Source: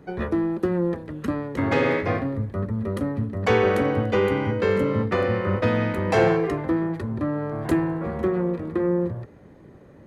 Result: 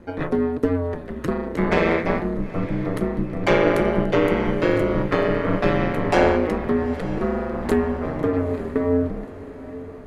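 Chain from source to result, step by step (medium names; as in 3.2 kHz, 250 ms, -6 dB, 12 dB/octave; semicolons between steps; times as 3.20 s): ring modulator 86 Hz; echo that smears into a reverb 912 ms, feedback 51%, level -15 dB; trim +5 dB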